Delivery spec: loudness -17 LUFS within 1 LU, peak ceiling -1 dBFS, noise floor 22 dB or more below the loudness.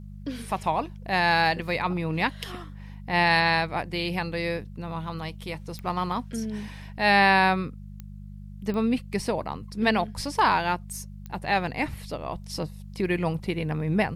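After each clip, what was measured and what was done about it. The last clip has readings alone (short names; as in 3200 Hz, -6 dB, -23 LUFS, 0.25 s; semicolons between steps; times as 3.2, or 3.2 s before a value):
clicks 4; hum 50 Hz; harmonics up to 200 Hz; hum level -38 dBFS; loudness -26.0 LUFS; peak -8.5 dBFS; loudness target -17.0 LUFS
-> de-click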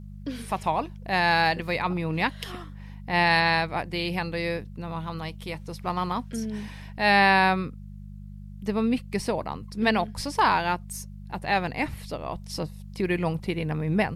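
clicks 0; hum 50 Hz; harmonics up to 200 Hz; hum level -38 dBFS
-> de-hum 50 Hz, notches 4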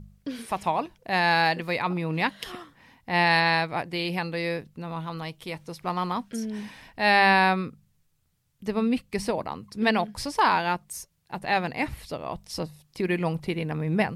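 hum none; loudness -26.0 LUFS; peak -8.0 dBFS; loudness target -17.0 LUFS
-> gain +9 dB; limiter -1 dBFS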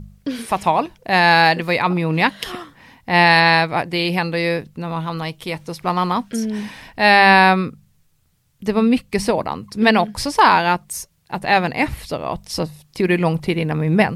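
loudness -17.5 LUFS; peak -1.0 dBFS; noise floor -60 dBFS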